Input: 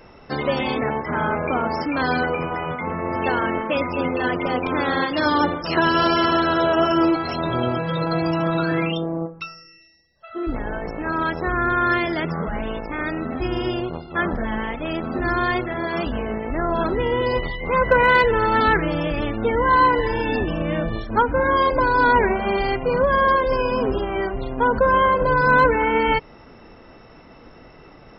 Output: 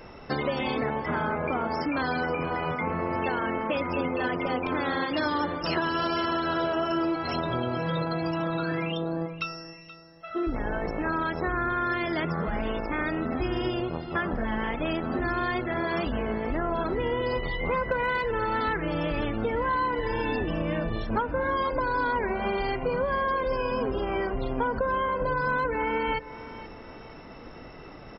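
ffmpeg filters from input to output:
-filter_complex "[0:a]acompressor=threshold=0.0501:ratio=6,asplit=2[s0][s1];[s1]aecho=0:1:477|954|1431:0.158|0.0555|0.0194[s2];[s0][s2]amix=inputs=2:normalize=0,volume=1.12"

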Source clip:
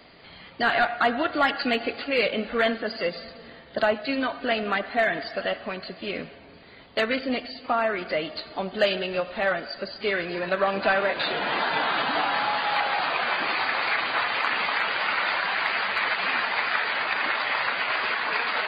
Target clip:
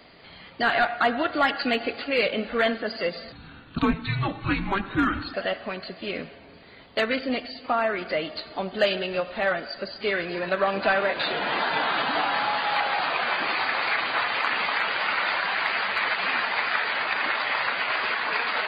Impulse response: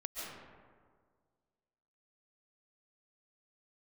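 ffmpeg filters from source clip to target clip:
-filter_complex "[0:a]asettb=1/sr,asplit=3[s0][s1][s2];[s0]atrim=end=3.324[s3];[s1]atrim=start=3.32:end=5.34,asetpts=PTS-STARTPTS,afade=t=in:d=0.004:c=qsin,afade=t=out:st=2.016:d=0.004:c=qsin,afreqshift=-390[s4];[s2]atrim=start=5.336[s5];[s3][s4]acrossfade=d=0.004:c1=hsin:c2=qsin[s6];[s6][s5]acrossfade=d=0.004:c1=qsin:c2=hsin"

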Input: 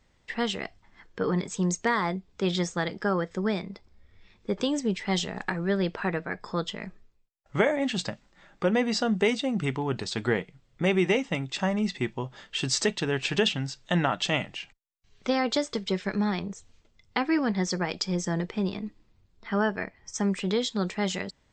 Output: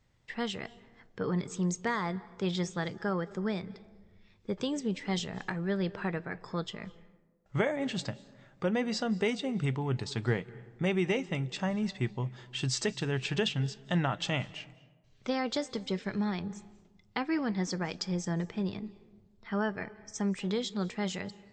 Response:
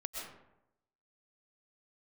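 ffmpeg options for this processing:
-filter_complex "[0:a]equalizer=f=120:t=o:w=0.7:g=10,asplit=2[s0][s1];[1:a]atrim=start_sample=2205,asetrate=28224,aresample=44100[s2];[s1][s2]afir=irnorm=-1:irlink=0,volume=0.1[s3];[s0][s3]amix=inputs=2:normalize=0,volume=0.447"

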